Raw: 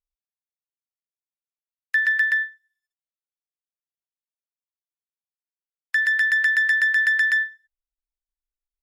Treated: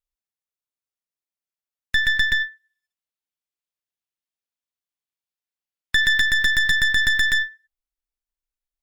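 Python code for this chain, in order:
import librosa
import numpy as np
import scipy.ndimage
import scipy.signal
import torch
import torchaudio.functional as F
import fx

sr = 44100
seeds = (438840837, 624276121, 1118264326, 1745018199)

y = fx.tracing_dist(x, sr, depth_ms=0.18)
y = fx.peak_eq(y, sr, hz=3000.0, db=4.0, octaves=1.4, at=(2.4, 6.21))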